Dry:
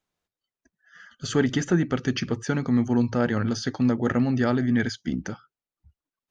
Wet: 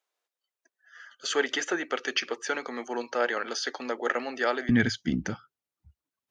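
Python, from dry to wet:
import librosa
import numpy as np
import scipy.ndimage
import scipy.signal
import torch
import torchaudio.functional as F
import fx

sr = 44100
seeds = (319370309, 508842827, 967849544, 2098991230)

y = fx.highpass(x, sr, hz=fx.steps((0.0, 420.0), (4.69, 55.0)), slope=24)
y = fx.dynamic_eq(y, sr, hz=2500.0, q=1.0, threshold_db=-45.0, ratio=4.0, max_db=5)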